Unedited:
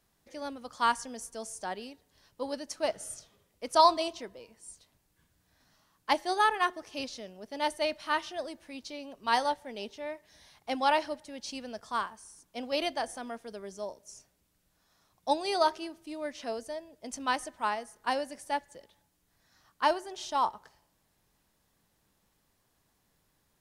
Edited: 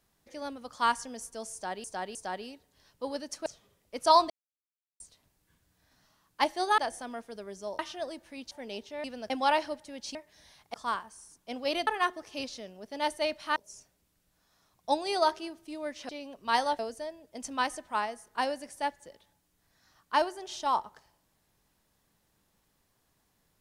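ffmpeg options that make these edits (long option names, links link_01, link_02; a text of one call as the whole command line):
ffmpeg -i in.wav -filter_complex "[0:a]asplit=17[link_01][link_02][link_03][link_04][link_05][link_06][link_07][link_08][link_09][link_10][link_11][link_12][link_13][link_14][link_15][link_16][link_17];[link_01]atrim=end=1.842[link_18];[link_02]atrim=start=1.528:end=1.842[link_19];[link_03]atrim=start=1.528:end=2.842[link_20];[link_04]atrim=start=3.148:end=3.99,asetpts=PTS-STARTPTS,afade=type=out:start_time=0.838:duration=0.004:curve=hsin[link_21];[link_05]atrim=start=3.99:end=4.69,asetpts=PTS-STARTPTS,volume=0[link_22];[link_06]atrim=start=4.69:end=6.472,asetpts=PTS-STARTPTS,afade=type=in:duration=0.004:curve=hsin[link_23];[link_07]atrim=start=12.938:end=13.952[link_24];[link_08]atrim=start=8.158:end=8.882[link_25];[link_09]atrim=start=9.578:end=10.112[link_26];[link_10]atrim=start=11.548:end=11.812[link_27];[link_11]atrim=start=10.698:end=11.552[link_28];[link_12]atrim=start=10.108:end=10.702[link_29];[link_13]atrim=start=11.808:end=12.942[link_30];[link_14]atrim=start=6.468:end=8.162[link_31];[link_15]atrim=start=13.948:end=16.482[link_32];[link_16]atrim=start=8.878:end=9.582[link_33];[link_17]atrim=start=16.478[link_34];[link_18][link_19]acrossfade=duration=0.004:curve1=hsin:curve2=hsin[link_35];[link_35][link_20]acrossfade=duration=0.004:curve1=hsin:curve2=hsin[link_36];[link_21][link_22][link_23]concat=n=3:v=0:a=1[link_37];[link_36][link_37]acrossfade=duration=0.004:curve1=hsin:curve2=hsin[link_38];[link_38][link_24]acrossfade=duration=0.004:curve1=hsin:curve2=hsin[link_39];[link_39][link_25]acrossfade=duration=0.004:curve1=hsin:curve2=hsin[link_40];[link_40][link_26]acrossfade=duration=0.004:curve1=hsin:curve2=hsin[link_41];[link_41][link_27]acrossfade=duration=0.004:curve1=hsin:curve2=hsin[link_42];[link_42][link_28]acrossfade=duration=0.004:curve1=hsin:curve2=hsin[link_43];[link_43][link_29]acrossfade=duration=0.004:curve1=hsin:curve2=hsin[link_44];[link_44][link_30]acrossfade=duration=0.004:curve1=hsin:curve2=hsin[link_45];[link_45][link_31]acrossfade=duration=0.004:curve1=hsin:curve2=hsin[link_46];[link_46][link_32]acrossfade=duration=0.004:curve1=hsin:curve2=hsin[link_47];[link_47][link_33]acrossfade=duration=0.004:curve1=hsin:curve2=hsin[link_48];[link_48][link_34]acrossfade=duration=0.004:curve1=hsin:curve2=hsin" out.wav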